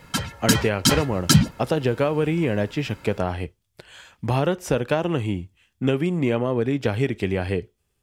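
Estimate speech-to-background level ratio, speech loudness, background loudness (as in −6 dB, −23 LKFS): −3.5 dB, −24.5 LKFS, −21.0 LKFS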